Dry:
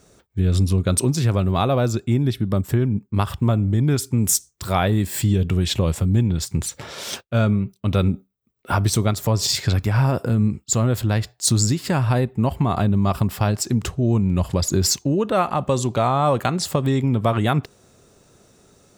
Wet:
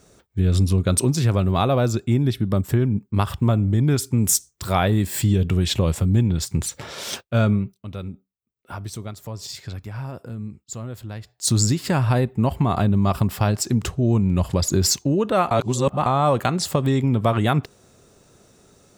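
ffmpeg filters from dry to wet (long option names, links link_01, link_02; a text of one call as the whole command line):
ffmpeg -i in.wav -filter_complex "[0:a]asplit=5[link_01][link_02][link_03][link_04][link_05];[link_01]atrim=end=7.87,asetpts=PTS-STARTPTS,afade=type=out:start_time=7.55:duration=0.32:silence=0.211349[link_06];[link_02]atrim=start=7.87:end=11.25,asetpts=PTS-STARTPTS,volume=-13.5dB[link_07];[link_03]atrim=start=11.25:end=15.512,asetpts=PTS-STARTPTS,afade=type=in:duration=0.32:silence=0.211349[link_08];[link_04]atrim=start=15.508:end=16.062,asetpts=PTS-STARTPTS,areverse[link_09];[link_05]atrim=start=16.058[link_10];[link_06][link_07][link_08]concat=n=3:v=0:a=1[link_11];[link_11][link_09]acrossfade=duration=0.004:curve1=hsin:curve2=hsin[link_12];[link_12][link_10]acrossfade=duration=0.004:curve1=hsin:curve2=hsin" out.wav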